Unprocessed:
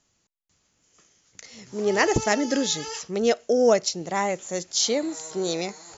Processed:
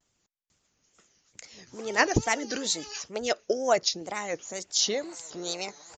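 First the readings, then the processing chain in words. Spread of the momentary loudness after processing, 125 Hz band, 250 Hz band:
14 LU, −2.5 dB, −8.0 dB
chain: harmonic and percussive parts rebalanced harmonic −12 dB
tape wow and flutter 130 cents
downsampling to 16,000 Hz

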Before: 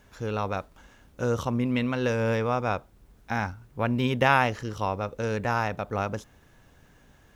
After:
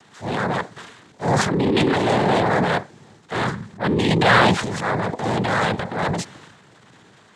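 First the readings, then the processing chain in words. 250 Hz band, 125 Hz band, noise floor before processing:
+7.5 dB, +6.0 dB, −58 dBFS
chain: cochlear-implant simulation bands 6
transient designer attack −7 dB, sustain +9 dB
level +7.5 dB

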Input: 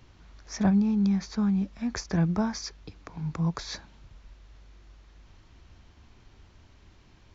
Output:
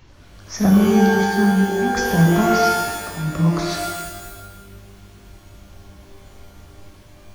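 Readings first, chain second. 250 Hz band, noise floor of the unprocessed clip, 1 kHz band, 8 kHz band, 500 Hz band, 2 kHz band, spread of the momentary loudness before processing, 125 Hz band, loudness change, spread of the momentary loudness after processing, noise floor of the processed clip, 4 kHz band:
+9.0 dB, −57 dBFS, +19.0 dB, can't be measured, +19.0 dB, +19.5 dB, 16 LU, +9.5 dB, +10.0 dB, 15 LU, −46 dBFS, +11.5 dB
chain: spectral magnitudes quantised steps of 15 dB
reverb with rising layers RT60 1.2 s, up +12 semitones, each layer −2 dB, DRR 0.5 dB
level +6 dB

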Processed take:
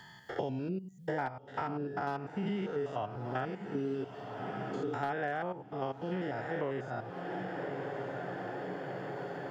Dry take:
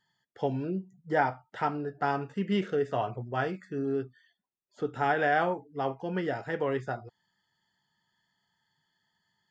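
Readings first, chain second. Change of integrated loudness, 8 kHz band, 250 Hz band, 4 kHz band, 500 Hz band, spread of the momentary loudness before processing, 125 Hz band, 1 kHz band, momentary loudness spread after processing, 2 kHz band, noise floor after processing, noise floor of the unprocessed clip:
−6.5 dB, can't be measured, −3.5 dB, −5.5 dB, −4.5 dB, 8 LU, −3.0 dB, −6.0 dB, 5 LU, −6.5 dB, −53 dBFS, −81 dBFS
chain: spectrum averaged block by block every 100 ms
gain into a clipping stage and back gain 18 dB
on a send: feedback delay with all-pass diffusion 1,216 ms, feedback 47%, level −15 dB
on the sum: multiband upward and downward compressor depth 100%
level −4 dB

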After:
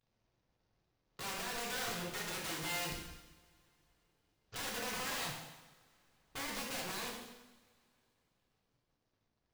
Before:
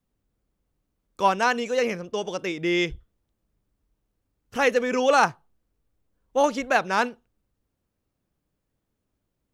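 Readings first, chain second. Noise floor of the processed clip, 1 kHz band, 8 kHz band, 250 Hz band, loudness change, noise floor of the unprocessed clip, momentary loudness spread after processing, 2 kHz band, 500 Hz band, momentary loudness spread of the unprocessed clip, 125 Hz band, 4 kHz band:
−82 dBFS, −20.5 dB, −3.5 dB, −18.5 dB, −16.0 dB, −79 dBFS, 14 LU, −15.0 dB, −23.0 dB, 9 LU, −10.0 dB, −7.0 dB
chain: variable-slope delta modulation 32 kbit/s
brickwall limiter −19.5 dBFS, peak gain reduction 11 dB
downward compressor 6 to 1, threshold −32 dBFS, peak gain reduction 8.5 dB
wrap-around overflow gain 32 dB
coupled-rooms reverb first 0.98 s, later 3.4 s, from −24 dB, DRR −3 dB
level −7 dB

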